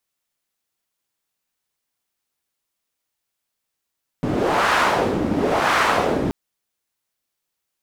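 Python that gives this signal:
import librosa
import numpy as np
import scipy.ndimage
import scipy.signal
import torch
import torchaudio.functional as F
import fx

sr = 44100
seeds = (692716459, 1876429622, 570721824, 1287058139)

y = fx.wind(sr, seeds[0], length_s=2.08, low_hz=260.0, high_hz=1300.0, q=1.4, gusts=2, swing_db=4)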